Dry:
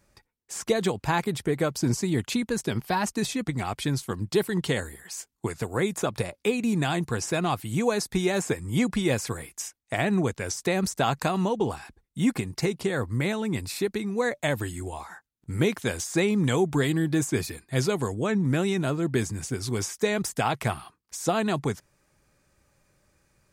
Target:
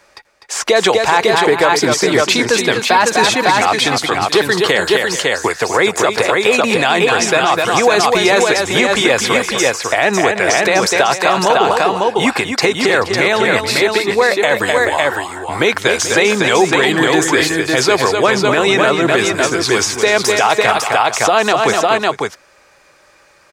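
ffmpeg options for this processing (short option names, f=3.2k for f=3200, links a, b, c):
-filter_complex "[0:a]acrossover=split=430 5800:gain=0.0891 1 0.224[a][b][c];[a][b][c]amix=inputs=3:normalize=0,asplit=2[d][e];[e]aecho=0:1:250|433|552:0.422|0.141|0.562[f];[d][f]amix=inputs=2:normalize=0,alimiter=level_in=21.5dB:limit=-1dB:release=50:level=0:latency=1,volume=-1dB"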